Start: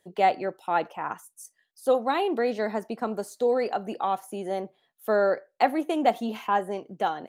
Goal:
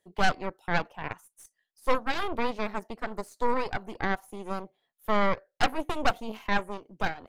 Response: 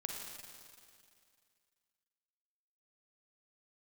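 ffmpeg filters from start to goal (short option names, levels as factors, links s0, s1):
-af "aeval=exprs='0.398*(cos(1*acos(clip(val(0)/0.398,-1,1)))-cos(1*PI/2))+0.2*(cos(6*acos(clip(val(0)/0.398,-1,1)))-cos(6*PI/2))':c=same,volume=0.422"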